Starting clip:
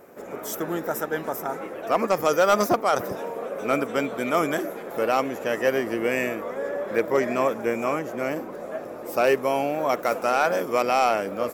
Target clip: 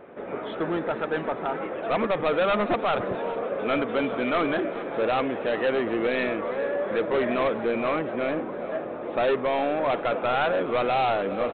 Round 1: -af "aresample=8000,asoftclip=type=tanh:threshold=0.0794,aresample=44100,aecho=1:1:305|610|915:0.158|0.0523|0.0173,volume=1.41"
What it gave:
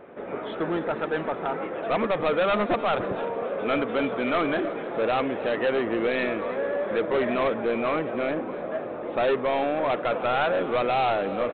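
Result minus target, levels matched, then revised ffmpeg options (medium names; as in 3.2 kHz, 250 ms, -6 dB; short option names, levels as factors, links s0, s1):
echo 103 ms early
-af "aresample=8000,asoftclip=type=tanh:threshold=0.0794,aresample=44100,aecho=1:1:408|816|1224:0.158|0.0523|0.0173,volume=1.41"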